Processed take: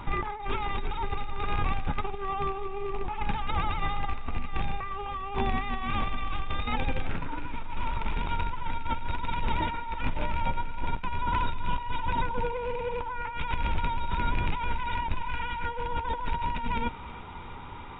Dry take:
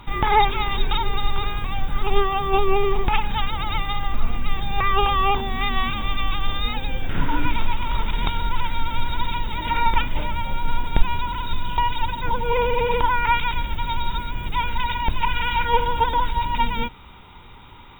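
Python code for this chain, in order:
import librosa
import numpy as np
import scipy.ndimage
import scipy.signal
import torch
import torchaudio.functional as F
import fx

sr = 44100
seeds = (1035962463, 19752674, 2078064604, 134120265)

p1 = fx.rattle_buzz(x, sr, strikes_db=-25.0, level_db=-20.0)
p2 = fx.low_shelf(p1, sr, hz=400.0, db=-6.5)
p3 = fx.over_compress(p2, sr, threshold_db=-30.0, ratio=-1.0)
p4 = fx.spacing_loss(p3, sr, db_at_10k=39)
p5 = fx.doubler(p4, sr, ms=12.0, db=-13.0)
p6 = p5 + fx.echo_thinned(p5, sr, ms=324, feedback_pct=63, hz=420.0, wet_db=-16.0, dry=0)
y = p6 * librosa.db_to_amplitude(3.0)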